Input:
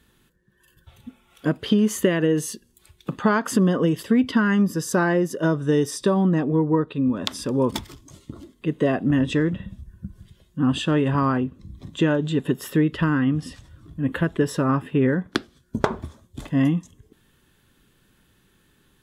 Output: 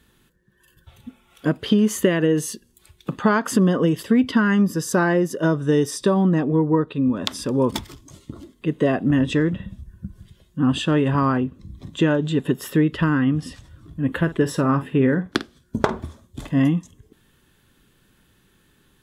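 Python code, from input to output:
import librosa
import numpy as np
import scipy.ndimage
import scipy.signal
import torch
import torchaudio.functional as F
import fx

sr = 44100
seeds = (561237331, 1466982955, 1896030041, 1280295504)

y = fx.doubler(x, sr, ms=50.0, db=-13.5, at=(14.18, 16.6))
y = y * 10.0 ** (1.5 / 20.0)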